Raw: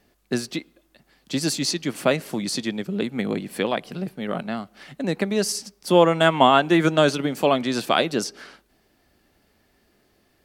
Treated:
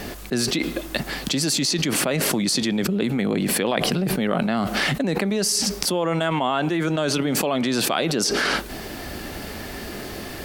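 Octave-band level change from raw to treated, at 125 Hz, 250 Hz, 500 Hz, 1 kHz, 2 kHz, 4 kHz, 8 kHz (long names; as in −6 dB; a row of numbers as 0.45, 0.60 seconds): +3.0, +1.5, −2.5, −4.0, +2.0, +3.5, +7.5 decibels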